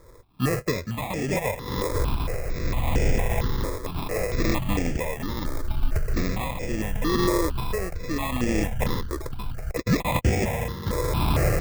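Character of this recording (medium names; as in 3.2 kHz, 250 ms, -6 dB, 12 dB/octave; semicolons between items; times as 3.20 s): a buzz of ramps at a fixed pitch in blocks of 8 samples; tremolo triangle 0.72 Hz, depth 65%; aliases and images of a low sample rate 1.5 kHz, jitter 0%; notches that jump at a steady rate 4.4 Hz 750–3900 Hz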